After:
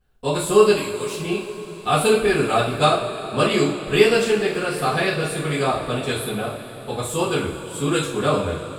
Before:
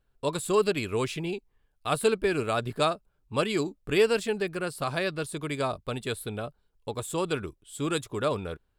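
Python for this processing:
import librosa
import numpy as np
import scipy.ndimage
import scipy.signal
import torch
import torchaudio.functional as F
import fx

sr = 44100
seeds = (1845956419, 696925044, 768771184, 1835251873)

y = fx.pre_emphasis(x, sr, coefficient=0.8, at=(0.77, 1.2))
y = fx.rev_double_slope(y, sr, seeds[0], early_s=0.44, late_s=4.9, knee_db=-18, drr_db=-10.0)
y = y * 10.0 ** (-1.5 / 20.0)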